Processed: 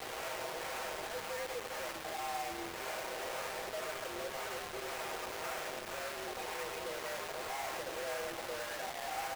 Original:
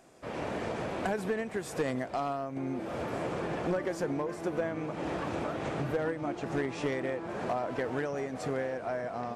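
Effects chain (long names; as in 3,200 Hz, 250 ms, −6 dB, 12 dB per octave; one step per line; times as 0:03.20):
sign of each sample alone
comb filter 7 ms, depth 67%
repeating echo 100 ms, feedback 59%, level −9 dB
single-sideband voice off tune +72 Hz 340–2,700 Hz
two-band tremolo in antiphase 1.9 Hz, depth 50%, crossover 620 Hz
bit reduction 6 bits
level −6 dB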